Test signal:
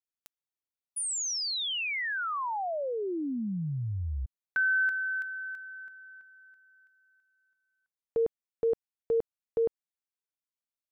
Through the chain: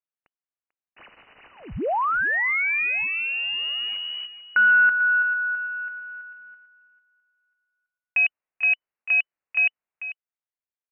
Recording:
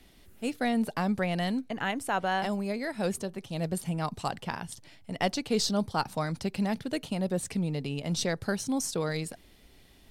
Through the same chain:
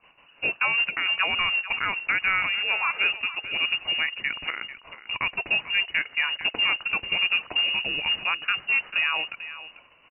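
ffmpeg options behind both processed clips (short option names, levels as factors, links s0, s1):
-filter_complex "[0:a]agate=range=0.251:threshold=0.00158:ratio=16:release=390:detection=peak,highpass=86,lowshelf=f=470:g=-7,alimiter=limit=0.0668:level=0:latency=1:release=242,acontrast=38,acrusher=bits=3:mode=log:mix=0:aa=0.000001,asplit=2[s0][s1];[s1]adelay=443.1,volume=0.224,highshelf=f=4000:g=-9.97[s2];[s0][s2]amix=inputs=2:normalize=0,lowpass=f=2600:t=q:w=0.5098,lowpass=f=2600:t=q:w=0.6013,lowpass=f=2600:t=q:w=0.9,lowpass=f=2600:t=q:w=2.563,afreqshift=-3000,volume=1.78"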